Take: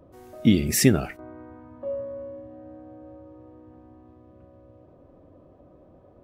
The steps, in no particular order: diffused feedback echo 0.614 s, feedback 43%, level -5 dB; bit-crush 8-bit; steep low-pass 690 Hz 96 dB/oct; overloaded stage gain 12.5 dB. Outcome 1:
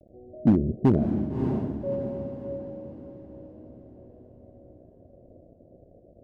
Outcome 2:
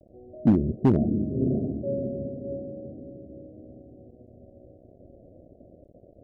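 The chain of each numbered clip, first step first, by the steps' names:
bit-crush > steep low-pass > overloaded stage > diffused feedback echo; diffused feedback echo > bit-crush > steep low-pass > overloaded stage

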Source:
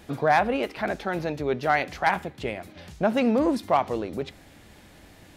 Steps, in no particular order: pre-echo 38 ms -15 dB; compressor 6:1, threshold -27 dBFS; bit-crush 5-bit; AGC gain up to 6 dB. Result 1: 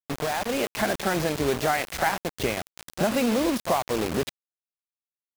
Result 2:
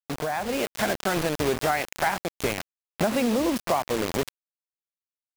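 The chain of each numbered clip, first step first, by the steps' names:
pre-echo > compressor > AGC > bit-crush; pre-echo > bit-crush > compressor > AGC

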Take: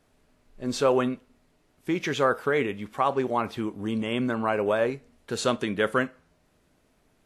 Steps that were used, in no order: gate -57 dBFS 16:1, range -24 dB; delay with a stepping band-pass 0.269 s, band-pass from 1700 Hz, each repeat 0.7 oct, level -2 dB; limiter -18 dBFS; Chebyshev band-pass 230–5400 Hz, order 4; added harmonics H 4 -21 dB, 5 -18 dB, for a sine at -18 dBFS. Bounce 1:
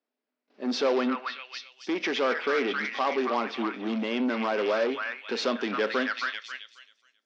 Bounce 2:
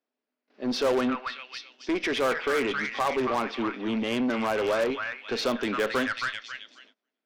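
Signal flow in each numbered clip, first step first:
gate > delay with a stepping band-pass > added harmonics > limiter > Chebyshev band-pass; delay with a stepping band-pass > gate > Chebyshev band-pass > added harmonics > limiter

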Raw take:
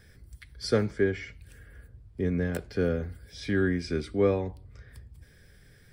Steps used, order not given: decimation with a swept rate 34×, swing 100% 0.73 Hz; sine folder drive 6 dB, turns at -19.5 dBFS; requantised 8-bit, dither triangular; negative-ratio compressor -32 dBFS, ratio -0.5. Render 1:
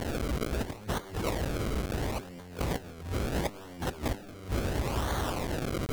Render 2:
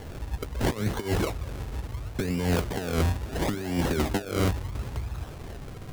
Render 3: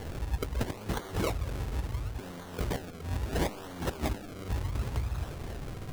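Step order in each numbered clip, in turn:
requantised > decimation with a swept rate > sine folder > negative-ratio compressor; negative-ratio compressor > sine folder > requantised > decimation with a swept rate; sine folder > negative-ratio compressor > requantised > decimation with a swept rate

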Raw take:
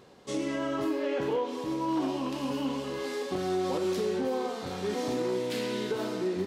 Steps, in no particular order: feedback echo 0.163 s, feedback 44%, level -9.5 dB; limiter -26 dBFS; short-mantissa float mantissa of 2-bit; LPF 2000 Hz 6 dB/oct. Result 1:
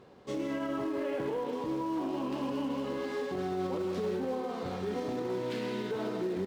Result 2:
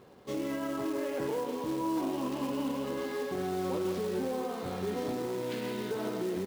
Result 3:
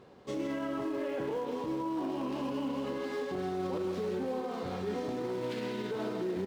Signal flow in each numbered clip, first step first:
feedback echo > short-mantissa float > LPF > limiter; LPF > limiter > short-mantissa float > feedback echo; short-mantissa float > feedback echo > limiter > LPF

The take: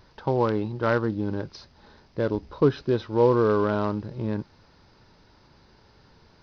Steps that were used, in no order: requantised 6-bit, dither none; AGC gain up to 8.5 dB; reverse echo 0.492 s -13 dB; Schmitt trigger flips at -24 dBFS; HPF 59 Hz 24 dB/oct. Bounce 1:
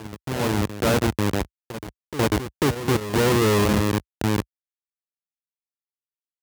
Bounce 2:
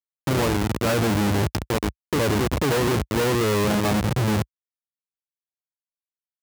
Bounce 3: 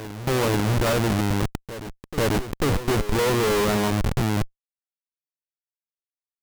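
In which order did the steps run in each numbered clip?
Schmitt trigger > AGC > reverse echo > requantised > HPF; reverse echo > requantised > AGC > Schmitt trigger > HPF; AGC > requantised > HPF > Schmitt trigger > reverse echo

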